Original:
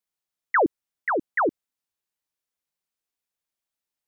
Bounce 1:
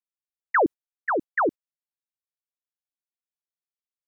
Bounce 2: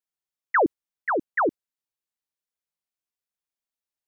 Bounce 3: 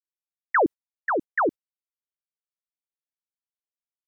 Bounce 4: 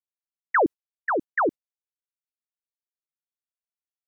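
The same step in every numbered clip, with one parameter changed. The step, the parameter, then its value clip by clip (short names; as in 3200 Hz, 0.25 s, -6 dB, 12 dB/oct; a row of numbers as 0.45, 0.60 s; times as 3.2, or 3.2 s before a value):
gate, range: -18, -6, -58, -34 dB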